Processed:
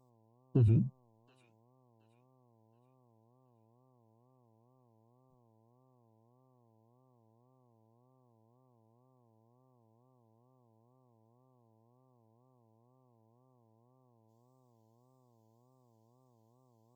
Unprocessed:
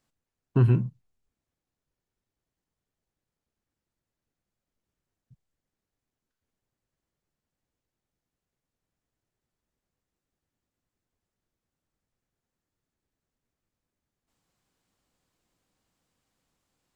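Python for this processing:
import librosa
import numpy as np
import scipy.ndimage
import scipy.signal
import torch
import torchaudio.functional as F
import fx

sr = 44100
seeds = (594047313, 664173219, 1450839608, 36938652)

p1 = fx.bin_expand(x, sr, power=1.5)
p2 = fx.over_compress(p1, sr, threshold_db=-25.0, ratio=-0.5)
p3 = p1 + (p2 * librosa.db_to_amplitude(0.5))
p4 = fx.band_shelf(p3, sr, hz=1500.0, db=-12.5, octaves=1.7)
p5 = fx.dmg_buzz(p4, sr, base_hz=120.0, harmonics=9, level_db=-61.0, tilt_db=-4, odd_only=False)
p6 = fx.wow_flutter(p5, sr, seeds[0], rate_hz=2.1, depth_cents=140.0)
p7 = p6 + fx.echo_wet_highpass(p6, sr, ms=723, feedback_pct=33, hz=2000.0, wet_db=-10.5, dry=0)
y = p7 * librosa.db_to_amplitude(-8.0)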